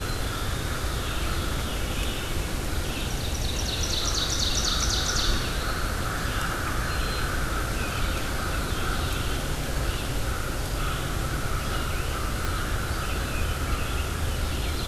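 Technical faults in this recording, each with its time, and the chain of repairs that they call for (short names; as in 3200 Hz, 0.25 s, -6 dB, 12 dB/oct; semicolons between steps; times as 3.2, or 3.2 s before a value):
12.45 pop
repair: de-click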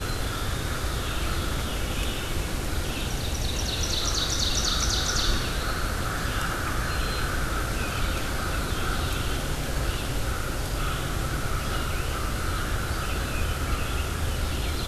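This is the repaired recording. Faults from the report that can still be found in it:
12.45 pop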